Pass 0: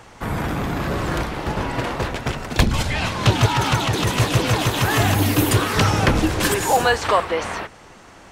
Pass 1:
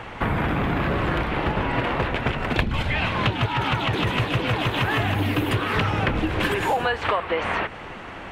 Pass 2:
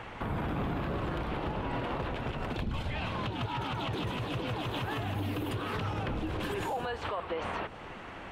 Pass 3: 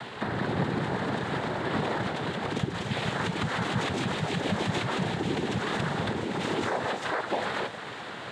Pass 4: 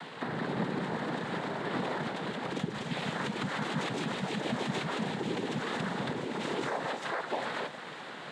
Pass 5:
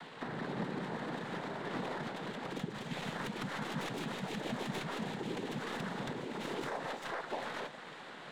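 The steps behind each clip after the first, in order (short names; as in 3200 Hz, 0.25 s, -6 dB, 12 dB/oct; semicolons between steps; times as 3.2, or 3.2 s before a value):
resonant high shelf 4100 Hz -13 dB, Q 1.5; compressor 6:1, threshold -28 dBFS, peak gain reduction 17 dB; gain +7.5 dB
dynamic EQ 2000 Hz, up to -7 dB, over -40 dBFS, Q 1.4; limiter -18.5 dBFS, peak gain reduction 8 dB; gain -7 dB
noise vocoder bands 6; thinning echo 0.323 s, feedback 81%, high-pass 850 Hz, level -12 dB; gain +5.5 dB
frequency shift +34 Hz; gain -4.5 dB
tracing distortion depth 0.061 ms; gain -5.5 dB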